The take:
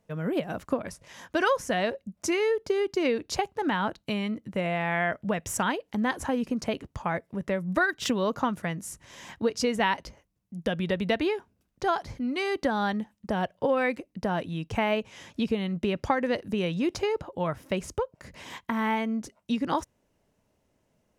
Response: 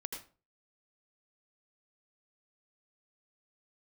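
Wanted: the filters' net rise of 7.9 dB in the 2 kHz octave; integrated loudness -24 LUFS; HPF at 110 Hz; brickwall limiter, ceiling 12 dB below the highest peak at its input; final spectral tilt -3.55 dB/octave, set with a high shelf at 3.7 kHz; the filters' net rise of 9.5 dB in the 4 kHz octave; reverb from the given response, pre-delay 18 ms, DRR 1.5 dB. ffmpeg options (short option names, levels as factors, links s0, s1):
-filter_complex "[0:a]highpass=110,equalizer=f=2000:t=o:g=7,highshelf=f=3700:g=5,equalizer=f=4000:t=o:g=7,alimiter=limit=0.141:level=0:latency=1,asplit=2[s0][s1];[1:a]atrim=start_sample=2205,adelay=18[s2];[s1][s2]afir=irnorm=-1:irlink=0,volume=0.944[s3];[s0][s3]amix=inputs=2:normalize=0,volume=1.26"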